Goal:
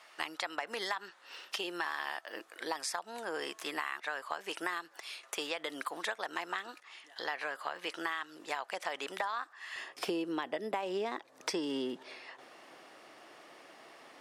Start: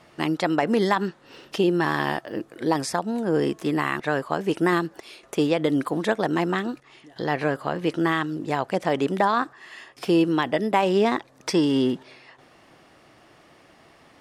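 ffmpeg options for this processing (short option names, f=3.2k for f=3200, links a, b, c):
-af "asetnsamples=n=441:p=0,asendcmd='9.76 highpass f 360',highpass=1k,acompressor=threshold=-33dB:ratio=6"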